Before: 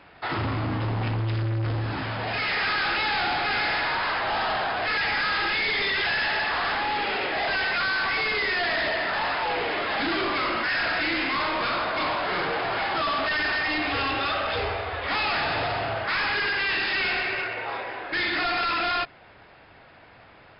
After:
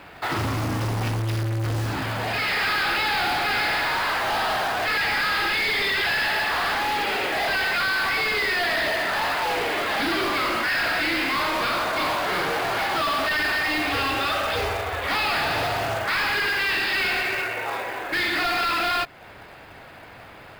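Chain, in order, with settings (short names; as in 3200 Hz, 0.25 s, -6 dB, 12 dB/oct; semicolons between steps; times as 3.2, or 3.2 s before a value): in parallel at +2 dB: compressor 16:1, threshold -38 dBFS, peak gain reduction 14.5 dB; on the sum: short-mantissa float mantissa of 2-bit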